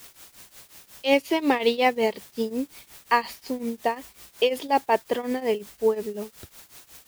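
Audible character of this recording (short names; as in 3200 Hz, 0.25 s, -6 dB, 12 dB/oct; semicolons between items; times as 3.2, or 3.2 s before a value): a quantiser's noise floor 8-bit, dither triangular; tremolo triangle 5.5 Hz, depth 90%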